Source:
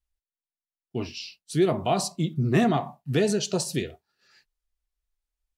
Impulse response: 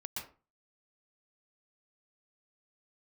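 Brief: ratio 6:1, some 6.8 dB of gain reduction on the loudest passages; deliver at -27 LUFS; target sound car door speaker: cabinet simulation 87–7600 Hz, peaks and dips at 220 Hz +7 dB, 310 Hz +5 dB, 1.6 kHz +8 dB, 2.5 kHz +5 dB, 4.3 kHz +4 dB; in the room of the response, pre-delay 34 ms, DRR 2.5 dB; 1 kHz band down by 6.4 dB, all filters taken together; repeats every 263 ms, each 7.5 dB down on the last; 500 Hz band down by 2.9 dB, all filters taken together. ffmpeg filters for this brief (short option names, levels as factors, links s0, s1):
-filter_complex "[0:a]equalizer=f=500:t=o:g=-4.5,equalizer=f=1000:t=o:g=-8.5,acompressor=threshold=0.0562:ratio=6,aecho=1:1:263|526|789|1052|1315:0.422|0.177|0.0744|0.0312|0.0131,asplit=2[s0][s1];[1:a]atrim=start_sample=2205,adelay=34[s2];[s1][s2]afir=irnorm=-1:irlink=0,volume=0.794[s3];[s0][s3]amix=inputs=2:normalize=0,highpass=87,equalizer=f=220:t=q:w=4:g=7,equalizer=f=310:t=q:w=4:g=5,equalizer=f=1600:t=q:w=4:g=8,equalizer=f=2500:t=q:w=4:g=5,equalizer=f=4300:t=q:w=4:g=4,lowpass=f=7600:w=0.5412,lowpass=f=7600:w=1.3066,volume=0.841"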